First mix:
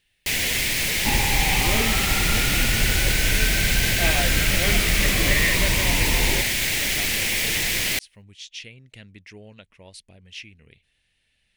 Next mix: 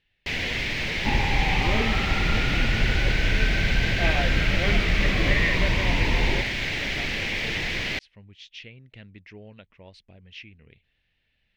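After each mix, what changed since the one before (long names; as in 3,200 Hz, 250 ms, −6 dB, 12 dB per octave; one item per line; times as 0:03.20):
master: add high-frequency loss of the air 230 metres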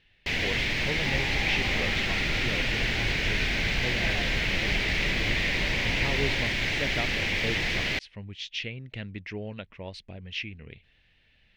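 speech +8.5 dB
second sound −11.0 dB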